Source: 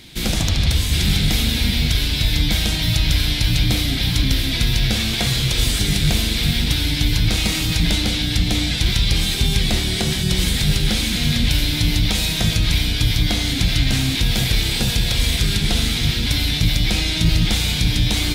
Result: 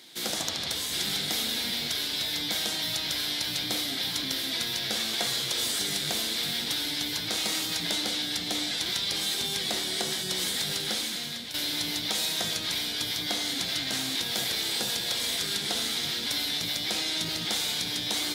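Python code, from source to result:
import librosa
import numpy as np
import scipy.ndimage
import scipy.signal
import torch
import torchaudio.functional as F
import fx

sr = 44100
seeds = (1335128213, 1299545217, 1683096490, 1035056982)

y = fx.edit(x, sr, fx.fade_out_to(start_s=10.85, length_s=0.69, floor_db=-10.0), tone=tone)
y = scipy.signal.sosfilt(scipy.signal.butter(2, 410.0, 'highpass', fs=sr, output='sos'), y)
y = fx.peak_eq(y, sr, hz=2500.0, db=-7.5, octaves=0.49)
y = y * librosa.db_to_amplitude(-5.0)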